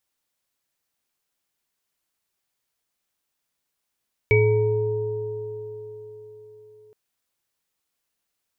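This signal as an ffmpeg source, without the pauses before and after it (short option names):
-f lavfi -i "aevalsrc='0.141*pow(10,-3*t/3.29)*sin(2*PI*110*t)+0.168*pow(10,-3*t/4.71)*sin(2*PI*427*t)+0.0168*pow(10,-3*t/3.57)*sin(2*PI*933*t)+0.133*pow(10,-3*t/0.56)*sin(2*PI*2270*t)':d=2.62:s=44100"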